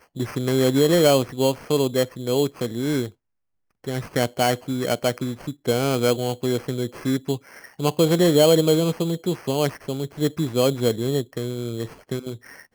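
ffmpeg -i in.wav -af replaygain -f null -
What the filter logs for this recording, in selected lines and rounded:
track_gain = +1.4 dB
track_peak = 0.363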